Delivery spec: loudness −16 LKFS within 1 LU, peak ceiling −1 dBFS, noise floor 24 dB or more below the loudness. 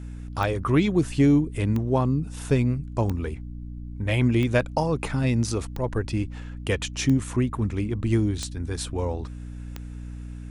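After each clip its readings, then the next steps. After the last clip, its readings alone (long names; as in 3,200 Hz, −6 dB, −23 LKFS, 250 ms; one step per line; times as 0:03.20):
number of clicks 8; mains hum 60 Hz; hum harmonics up to 300 Hz; level of the hum −33 dBFS; integrated loudness −25.0 LKFS; sample peak −9.0 dBFS; target loudness −16.0 LKFS
→ click removal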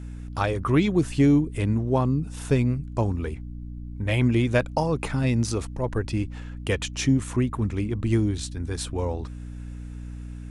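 number of clicks 0; mains hum 60 Hz; hum harmonics up to 300 Hz; level of the hum −33 dBFS
→ mains-hum notches 60/120/180/240/300 Hz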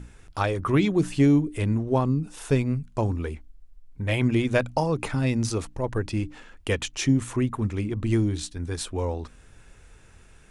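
mains hum none found; integrated loudness −25.5 LKFS; sample peak −8.5 dBFS; target loudness −16.0 LKFS
→ level +9.5 dB
brickwall limiter −1 dBFS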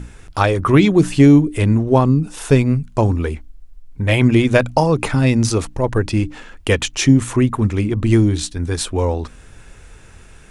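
integrated loudness −16.5 LKFS; sample peak −1.0 dBFS; background noise floor −43 dBFS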